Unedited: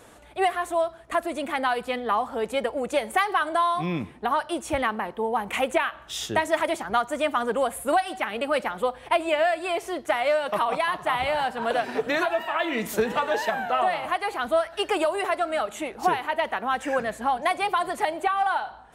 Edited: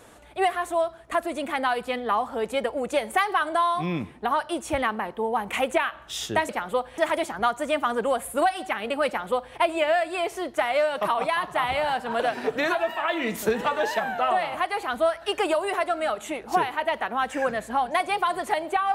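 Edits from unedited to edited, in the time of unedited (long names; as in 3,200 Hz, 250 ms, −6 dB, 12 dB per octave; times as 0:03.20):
0:08.58–0:09.07: duplicate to 0:06.49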